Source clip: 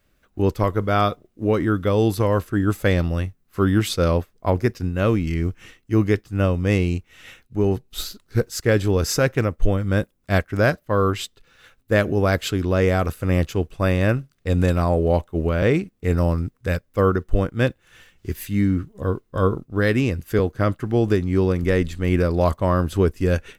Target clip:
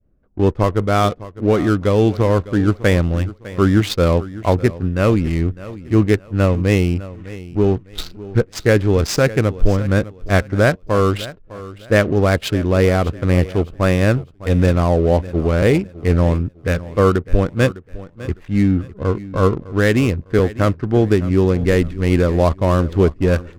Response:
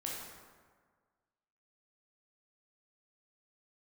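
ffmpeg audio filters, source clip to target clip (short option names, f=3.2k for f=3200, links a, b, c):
-af "adynamicsmooth=sensitivity=6:basefreq=530,adynamicequalizer=threshold=0.02:dfrequency=1300:dqfactor=0.94:tfrequency=1300:tqfactor=0.94:attack=5:release=100:ratio=0.375:range=2:mode=cutabove:tftype=bell,aecho=1:1:605|1210|1815:0.141|0.041|0.0119,volume=4.5dB"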